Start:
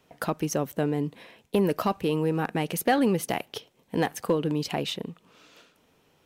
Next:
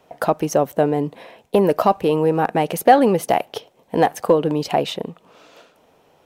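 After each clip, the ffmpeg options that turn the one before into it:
ffmpeg -i in.wav -af "equalizer=frequency=680:width=0.97:gain=11,volume=3dB" out.wav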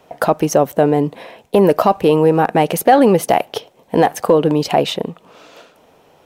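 ffmpeg -i in.wav -af "alimiter=level_in=6.5dB:limit=-1dB:release=50:level=0:latency=1,volume=-1dB" out.wav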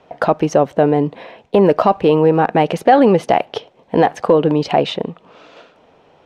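ffmpeg -i in.wav -af "lowpass=4100" out.wav

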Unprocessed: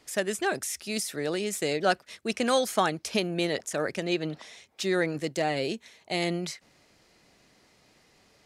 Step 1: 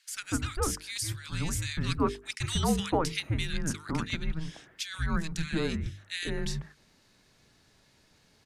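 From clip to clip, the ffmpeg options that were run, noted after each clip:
ffmpeg -i in.wav -filter_complex "[0:a]afreqshift=-320,bandreject=frequency=50:width_type=h:width=6,bandreject=frequency=100:width_type=h:width=6,bandreject=frequency=150:width_type=h:width=6,bandreject=frequency=200:width_type=h:width=6,bandreject=frequency=250:width_type=h:width=6,bandreject=frequency=300:width_type=h:width=6,bandreject=frequency=350:width_type=h:width=6,bandreject=frequency=400:width_type=h:width=6,bandreject=frequency=450:width_type=h:width=6,acrossover=split=1600[link_01][link_02];[link_01]adelay=150[link_03];[link_03][link_02]amix=inputs=2:normalize=0,volume=-1dB" out.wav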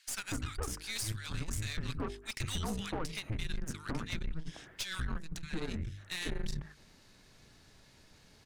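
ffmpeg -i in.wav -af "lowshelf=frequency=62:gain=8,acompressor=threshold=-35dB:ratio=4,aeval=exprs='(tanh(63.1*val(0)+0.6)-tanh(0.6))/63.1':channel_layout=same,volume=5dB" out.wav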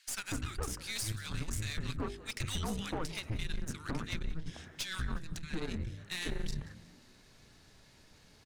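ffmpeg -i in.wav -filter_complex "[0:a]asplit=4[link_01][link_02][link_03][link_04];[link_02]adelay=181,afreqshift=74,volume=-18.5dB[link_05];[link_03]adelay=362,afreqshift=148,volume=-26dB[link_06];[link_04]adelay=543,afreqshift=222,volume=-33.6dB[link_07];[link_01][link_05][link_06][link_07]amix=inputs=4:normalize=0" out.wav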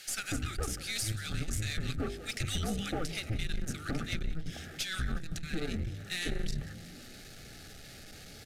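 ffmpeg -i in.wav -af "aeval=exprs='val(0)+0.5*0.00398*sgn(val(0))':channel_layout=same,asuperstop=centerf=1000:order=8:qfactor=3.1,aresample=32000,aresample=44100,volume=2dB" out.wav

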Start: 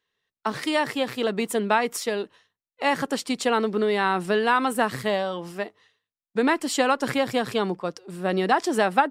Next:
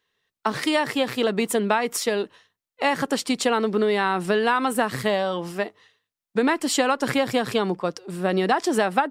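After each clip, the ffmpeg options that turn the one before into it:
ffmpeg -i in.wav -af "acompressor=threshold=-23dB:ratio=2.5,volume=4.5dB" out.wav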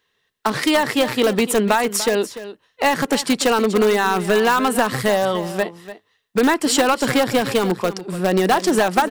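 ffmpeg -i in.wav -filter_complex "[0:a]asplit=2[link_01][link_02];[link_02]aeval=exprs='(mod(5.31*val(0)+1,2)-1)/5.31':channel_layout=same,volume=-9dB[link_03];[link_01][link_03]amix=inputs=2:normalize=0,aecho=1:1:293:0.2,volume=3dB" out.wav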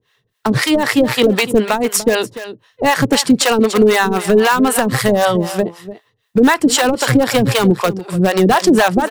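ffmpeg -i in.wav -filter_complex "[0:a]equalizer=frequency=120:width=3.1:gain=14.5,acrossover=split=530[link_01][link_02];[link_01]aeval=exprs='val(0)*(1-1/2+1/2*cos(2*PI*3.9*n/s))':channel_layout=same[link_03];[link_02]aeval=exprs='val(0)*(1-1/2-1/2*cos(2*PI*3.9*n/s))':channel_layout=same[link_04];[link_03][link_04]amix=inputs=2:normalize=0,alimiter=level_in=12dB:limit=-1dB:release=50:level=0:latency=1,volume=-2dB" out.wav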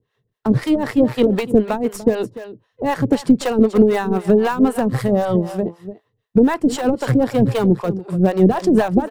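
ffmpeg -i in.wav -af "aeval=exprs='0.75*(cos(1*acos(clip(val(0)/0.75,-1,1)))-cos(1*PI/2))+0.075*(cos(2*acos(clip(val(0)/0.75,-1,1)))-cos(2*PI/2))':channel_layout=same,tiltshelf=frequency=970:gain=8.5,tremolo=f=5.8:d=0.44,volume=-6.5dB" out.wav

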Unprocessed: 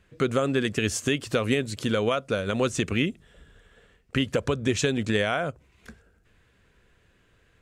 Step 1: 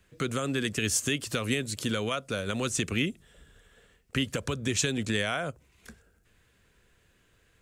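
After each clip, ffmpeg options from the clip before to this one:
ffmpeg -i in.wav -filter_complex "[0:a]highshelf=frequency=5700:gain=11.5,acrossover=split=290|1000|2100[link_01][link_02][link_03][link_04];[link_02]alimiter=level_in=2.5dB:limit=-24dB:level=0:latency=1,volume=-2.5dB[link_05];[link_01][link_05][link_03][link_04]amix=inputs=4:normalize=0,volume=-3.5dB" out.wav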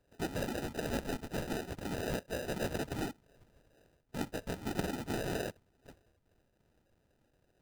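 ffmpeg -i in.wav -af "equalizer=frequency=125:width_type=o:width=1:gain=-9,equalizer=frequency=1000:width_type=o:width=1:gain=8,equalizer=frequency=2000:width_type=o:width=1:gain=-6,afftfilt=real='hypot(re,im)*cos(2*PI*random(0))':imag='hypot(re,im)*sin(2*PI*random(1))':win_size=512:overlap=0.75,acrusher=samples=40:mix=1:aa=0.000001" out.wav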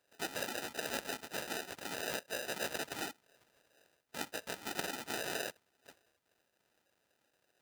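ffmpeg -i in.wav -af "highpass=frequency=1400:poles=1,volume=5dB" out.wav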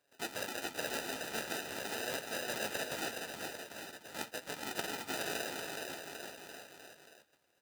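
ffmpeg -i in.wav -af "flanger=delay=6.7:depth=8.5:regen=55:speed=0.44:shape=triangular,aecho=1:1:420|798|1138|1444|1720:0.631|0.398|0.251|0.158|0.1,volume=3.5dB" out.wav

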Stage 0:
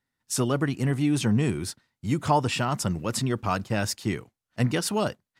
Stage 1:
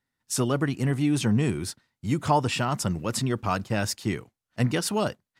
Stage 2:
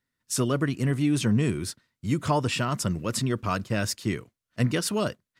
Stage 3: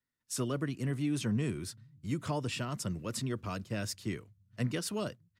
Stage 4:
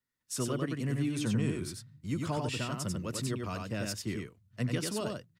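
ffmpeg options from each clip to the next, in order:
ffmpeg -i in.wav -af anull out.wav
ffmpeg -i in.wav -af "equalizer=frequency=810:width_type=o:width=0.22:gain=-12.5" out.wav
ffmpeg -i in.wav -filter_complex "[0:a]acrossover=split=130|730|1900[link_01][link_02][link_03][link_04];[link_01]aecho=1:1:468|936|1404|1872|2340:0.126|0.068|0.0367|0.0198|0.0107[link_05];[link_03]alimiter=level_in=4dB:limit=-24dB:level=0:latency=1:release=474,volume=-4dB[link_06];[link_05][link_02][link_06][link_04]amix=inputs=4:normalize=0,volume=-8.5dB" out.wav
ffmpeg -i in.wav -af "aecho=1:1:93:0.668" out.wav

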